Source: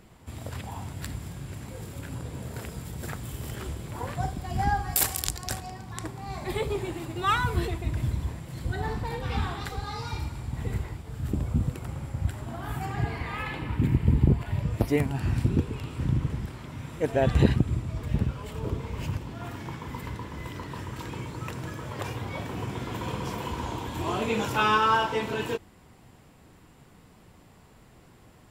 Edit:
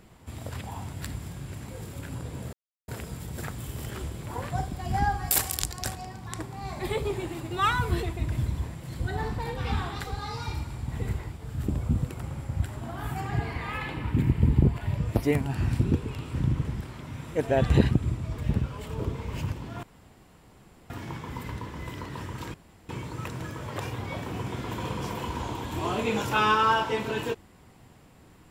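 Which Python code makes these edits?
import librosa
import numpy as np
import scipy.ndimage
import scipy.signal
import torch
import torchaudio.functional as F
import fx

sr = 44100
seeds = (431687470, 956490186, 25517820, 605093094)

y = fx.edit(x, sr, fx.insert_silence(at_s=2.53, length_s=0.35),
    fx.insert_room_tone(at_s=19.48, length_s=1.07),
    fx.insert_room_tone(at_s=21.12, length_s=0.35), tone=tone)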